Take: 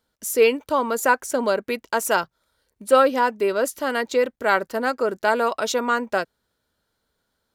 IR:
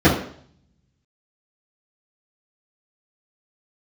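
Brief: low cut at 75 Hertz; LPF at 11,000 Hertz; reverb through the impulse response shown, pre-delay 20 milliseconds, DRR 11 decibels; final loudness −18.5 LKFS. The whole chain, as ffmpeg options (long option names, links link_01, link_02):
-filter_complex "[0:a]highpass=75,lowpass=11000,asplit=2[link_01][link_02];[1:a]atrim=start_sample=2205,adelay=20[link_03];[link_02][link_03]afir=irnorm=-1:irlink=0,volume=-34.5dB[link_04];[link_01][link_04]amix=inputs=2:normalize=0,volume=3dB"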